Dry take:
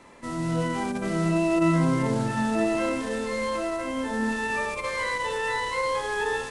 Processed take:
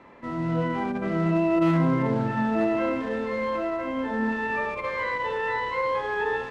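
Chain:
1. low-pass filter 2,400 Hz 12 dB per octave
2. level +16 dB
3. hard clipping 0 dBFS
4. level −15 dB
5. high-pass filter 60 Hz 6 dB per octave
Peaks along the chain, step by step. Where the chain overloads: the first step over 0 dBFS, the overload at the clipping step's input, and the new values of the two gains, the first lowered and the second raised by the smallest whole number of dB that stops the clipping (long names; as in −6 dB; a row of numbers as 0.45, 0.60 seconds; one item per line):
−12.5, +3.5, 0.0, −15.0, −13.5 dBFS
step 2, 3.5 dB
step 2 +12 dB, step 4 −11 dB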